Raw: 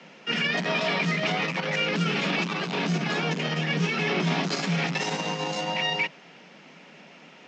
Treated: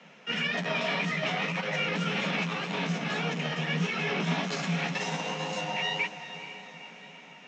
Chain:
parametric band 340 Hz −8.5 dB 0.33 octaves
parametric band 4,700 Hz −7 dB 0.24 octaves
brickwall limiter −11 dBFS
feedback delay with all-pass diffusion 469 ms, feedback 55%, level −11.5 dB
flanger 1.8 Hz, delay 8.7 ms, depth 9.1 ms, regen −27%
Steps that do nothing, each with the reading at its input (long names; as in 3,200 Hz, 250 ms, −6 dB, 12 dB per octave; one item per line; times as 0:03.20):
brickwall limiter −11 dBFS: peak of its input −14.0 dBFS